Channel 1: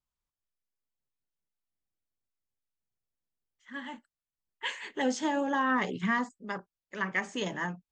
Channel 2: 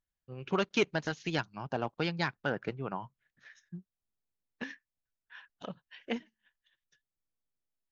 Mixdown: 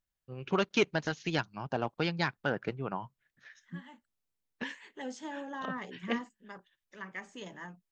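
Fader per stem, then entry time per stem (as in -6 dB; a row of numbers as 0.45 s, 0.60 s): -11.5 dB, +1.0 dB; 0.00 s, 0.00 s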